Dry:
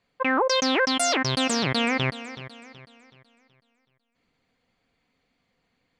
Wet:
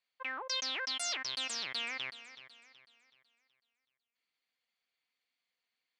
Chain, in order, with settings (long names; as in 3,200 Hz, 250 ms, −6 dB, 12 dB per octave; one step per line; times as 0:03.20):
resonant band-pass 4,200 Hz, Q 0.74
level −8.5 dB